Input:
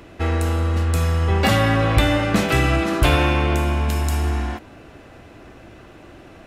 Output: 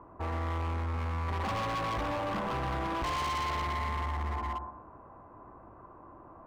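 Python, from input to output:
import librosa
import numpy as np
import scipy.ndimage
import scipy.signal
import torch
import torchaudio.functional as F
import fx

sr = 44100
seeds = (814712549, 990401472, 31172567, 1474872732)

y = fx.ladder_lowpass(x, sr, hz=1100.0, resonance_pct=80)
y = fx.echo_feedback(y, sr, ms=121, feedback_pct=28, wet_db=-8.5)
y = np.clip(10.0 ** (31.0 / 20.0) * y, -1.0, 1.0) / 10.0 ** (31.0 / 20.0)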